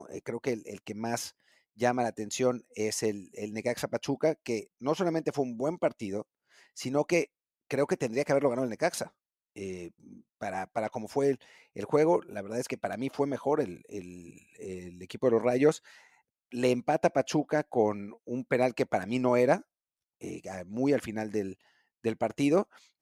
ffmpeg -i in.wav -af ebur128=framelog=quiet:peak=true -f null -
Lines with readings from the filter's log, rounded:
Integrated loudness:
  I:         -30.5 LUFS
  Threshold: -41.3 LUFS
Loudness range:
  LRA:         3.7 LU
  Threshold: -51.2 LUFS
  LRA low:   -32.7 LUFS
  LRA high:  -29.0 LUFS
True peak:
  Peak:      -10.9 dBFS